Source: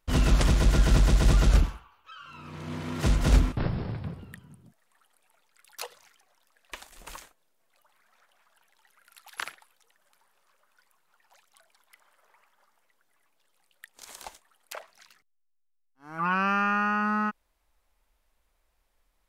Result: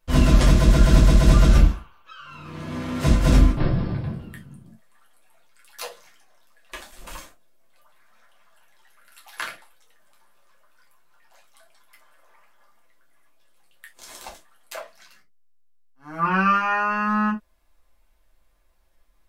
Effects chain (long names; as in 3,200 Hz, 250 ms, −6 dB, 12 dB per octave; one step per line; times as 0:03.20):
convolution reverb, pre-delay 6 ms, DRR −3 dB